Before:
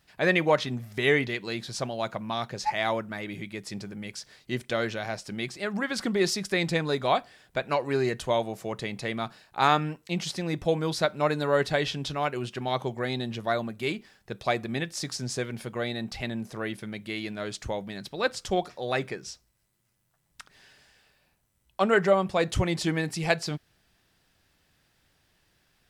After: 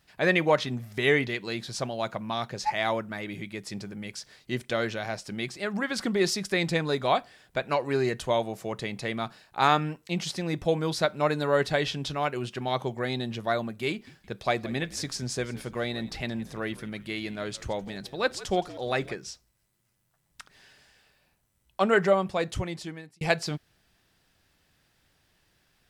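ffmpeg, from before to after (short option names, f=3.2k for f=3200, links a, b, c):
-filter_complex "[0:a]asettb=1/sr,asplit=3[a][b][c];[a]atrim=end=13.904[d];[b]atrim=start=13.9:end=19.15,asetpts=PTS-STARTPTS,afade=t=in:d=0.004:c=qsin,afade=t=out:st=5.246:d=0.004:c=qsin,asplit=5[e][f][g][h][i];[f]adelay=169,afreqshift=-67,volume=-18dB[j];[g]adelay=338,afreqshift=-134,volume=-25.1dB[k];[h]adelay=507,afreqshift=-201,volume=-32.3dB[l];[i]adelay=676,afreqshift=-268,volume=-39.4dB[m];[e][j][k][l][m]amix=inputs=5:normalize=0,atrim=end_sample=231525[n];[c]atrim=start=19.146[o];[d][n]acrossfade=d=0.004:c1=hsin:c2=qsin[p];[p][o]acrossfade=d=0.004:c1=qsin:c2=hsin,asplit=2[q][r];[q]atrim=end=23.21,asetpts=PTS-STARTPTS,afade=t=out:st=22.05:d=1.16[s];[r]atrim=start=23.21,asetpts=PTS-STARTPTS,afade=t=in:d=0.004:c=hsin[t];[s][t]concat=n=2:v=0:a=1"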